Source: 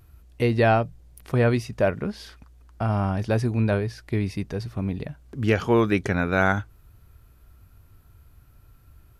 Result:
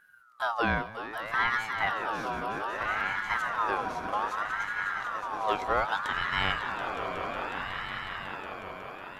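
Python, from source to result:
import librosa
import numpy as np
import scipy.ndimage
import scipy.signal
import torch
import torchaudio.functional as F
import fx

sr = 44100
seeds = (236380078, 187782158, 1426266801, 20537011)

y = fx.echo_swell(x, sr, ms=183, loudest=5, wet_db=-11.0)
y = fx.dmg_noise_colour(y, sr, seeds[0], colour='brown', level_db=-42.0, at=(4.88, 5.76), fade=0.02)
y = fx.ring_lfo(y, sr, carrier_hz=1200.0, swing_pct=30, hz=0.63)
y = F.gain(torch.from_numpy(y), -6.0).numpy()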